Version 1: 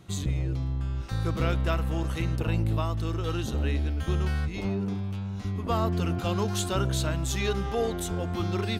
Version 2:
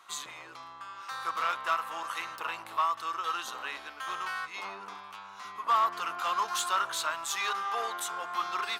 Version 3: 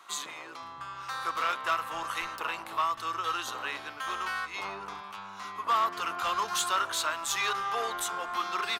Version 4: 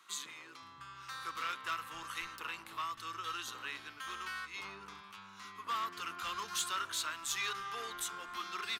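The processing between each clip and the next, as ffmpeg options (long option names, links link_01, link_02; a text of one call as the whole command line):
ffmpeg -i in.wav -af "asoftclip=type=hard:threshold=-21dB,highpass=frequency=1100:width_type=q:width=3.8,asoftclip=type=tanh:threshold=-17dB" out.wav
ffmpeg -i in.wav -filter_complex "[0:a]lowshelf=frequency=290:gain=8.5,acrossover=split=720|1200[link_01][link_02][link_03];[link_02]acompressor=threshold=-43dB:ratio=6[link_04];[link_01][link_04][link_03]amix=inputs=3:normalize=0,acrossover=split=170[link_05][link_06];[link_05]adelay=520[link_07];[link_07][link_06]amix=inputs=2:normalize=0,volume=2.5dB" out.wav
ffmpeg -i in.wav -af "equalizer=frequency=690:width=1.2:gain=-14,volume=-5dB" out.wav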